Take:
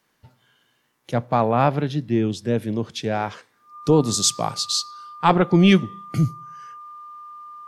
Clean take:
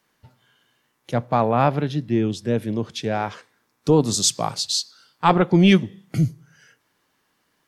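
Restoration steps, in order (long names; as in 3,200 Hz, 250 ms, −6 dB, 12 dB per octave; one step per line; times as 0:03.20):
notch filter 1,200 Hz, Q 30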